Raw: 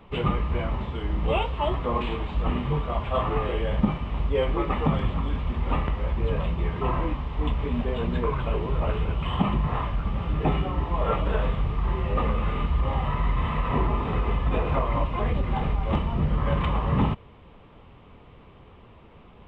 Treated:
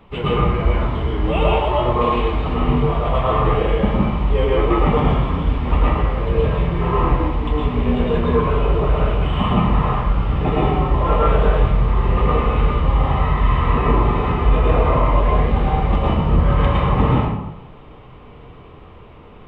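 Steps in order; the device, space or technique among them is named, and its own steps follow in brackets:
bathroom (convolution reverb RT60 0.90 s, pre-delay 105 ms, DRR −5 dB)
level +2 dB

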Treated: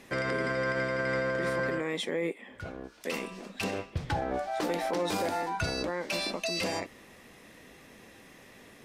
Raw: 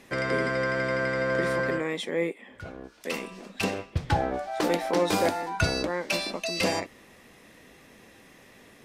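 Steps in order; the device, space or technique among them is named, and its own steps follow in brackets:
clipper into limiter (hard clipping −14.5 dBFS, distortion −34 dB; brickwall limiter −22 dBFS, peak gain reduction 7.5 dB)

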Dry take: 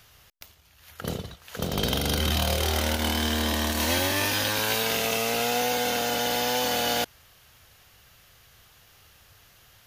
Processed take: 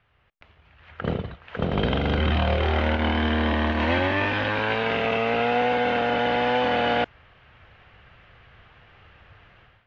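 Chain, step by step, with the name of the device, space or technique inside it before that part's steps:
action camera in a waterproof case (low-pass filter 2,600 Hz 24 dB per octave; automatic gain control gain up to 15 dB; level −8 dB; AAC 96 kbit/s 22,050 Hz)

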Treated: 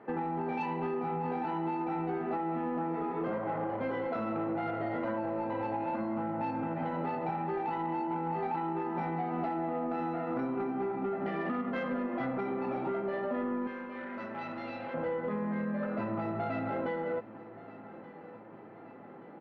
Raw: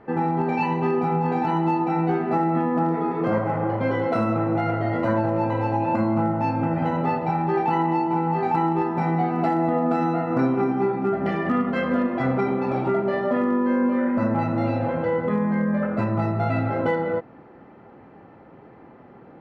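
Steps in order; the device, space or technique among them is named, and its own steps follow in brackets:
AM radio (band-pass filter 190–3,500 Hz; downward compressor, threshold −26 dBFS, peak gain reduction 8 dB; soft clipping −21 dBFS, distortion −22 dB)
0:13.67–0:14.94: tilt shelving filter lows −10 dB, about 1,400 Hz
repeating echo 1,177 ms, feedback 56%, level −18 dB
level −3.5 dB

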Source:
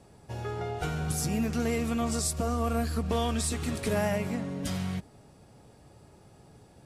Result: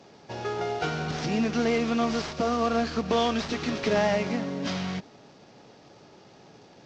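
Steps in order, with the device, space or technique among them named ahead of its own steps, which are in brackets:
early wireless headset (high-pass filter 210 Hz 12 dB per octave; variable-slope delta modulation 32 kbit/s)
level +6 dB

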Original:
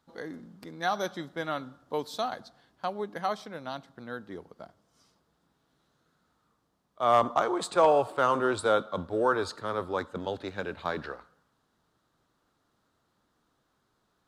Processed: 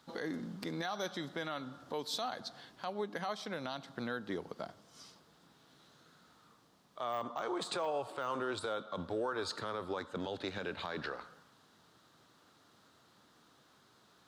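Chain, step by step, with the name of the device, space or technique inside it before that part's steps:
broadcast voice chain (high-pass filter 98 Hz; de-essing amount 90%; downward compressor 4 to 1, threshold −42 dBFS, peak gain reduction 20 dB; parametric band 3,900 Hz +5.5 dB 2 octaves; brickwall limiter −34 dBFS, peak gain reduction 9 dB)
level +7 dB

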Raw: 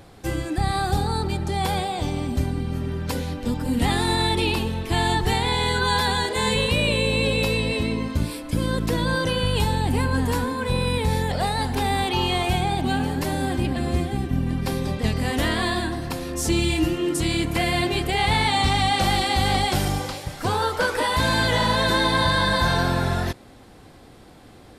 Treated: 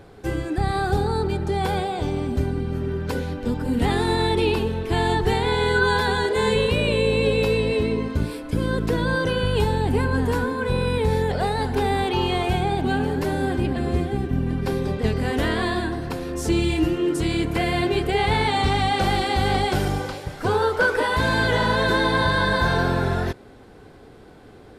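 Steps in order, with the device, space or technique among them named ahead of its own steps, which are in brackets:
inside a helmet (high-shelf EQ 3,600 Hz −8 dB; hollow resonant body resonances 420/1,500 Hz, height 9 dB, ringing for 45 ms)

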